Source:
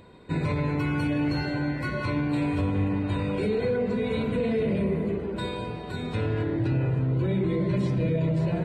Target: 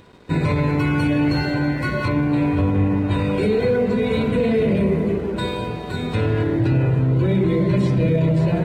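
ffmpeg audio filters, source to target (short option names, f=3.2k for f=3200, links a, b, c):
-filter_complex "[0:a]asettb=1/sr,asplit=3[a][b][c];[a]atrim=end=2.084[d];[b]atrim=start=2.08:end=3.11,asetpts=PTS-STARTPTS,afade=t=in:d=0.004:c=qsin,afade=t=out:st=1.026:d=0.004:c=qsin,aemphasis=mode=reproduction:type=75kf[e];[c]atrim=start=3.106[f];[d][e]acrossfade=d=0.004:c1=hsin:c2=qsin[g];[g][f]acrossfade=d=0.004:c1=qsin:c2=hsin,aeval=exprs='sgn(val(0))*max(abs(val(0))-0.00168,0)':c=same,volume=7.5dB"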